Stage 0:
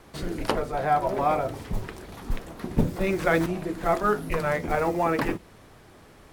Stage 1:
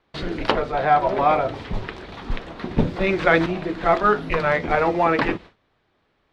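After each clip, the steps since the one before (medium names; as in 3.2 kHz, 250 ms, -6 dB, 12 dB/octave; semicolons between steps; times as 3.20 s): gate with hold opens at -37 dBFS; FFT filter 130 Hz 0 dB, 3.8 kHz +7 dB, 12 kHz -24 dB; trim +2 dB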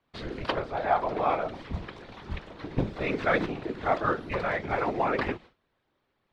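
whisper effect; trim -8.5 dB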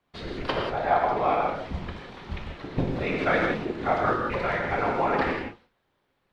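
gated-style reverb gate 210 ms flat, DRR 0 dB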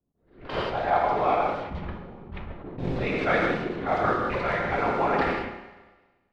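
level-controlled noise filter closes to 330 Hz, open at -23 dBFS; Schroeder reverb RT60 1.3 s, combs from 32 ms, DRR 9 dB; attacks held to a fixed rise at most 120 dB/s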